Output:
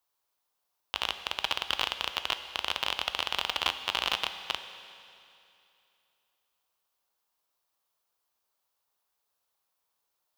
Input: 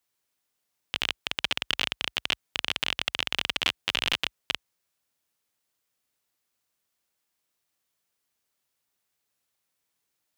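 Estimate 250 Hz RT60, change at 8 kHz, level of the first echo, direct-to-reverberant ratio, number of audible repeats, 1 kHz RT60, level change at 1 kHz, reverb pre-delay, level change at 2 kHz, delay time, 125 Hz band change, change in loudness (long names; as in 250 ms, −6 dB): 2.7 s, −3.5 dB, no echo audible, 9.0 dB, no echo audible, 2.7 s, +4.0 dB, 10 ms, −3.5 dB, no echo audible, −6.0 dB, −2.5 dB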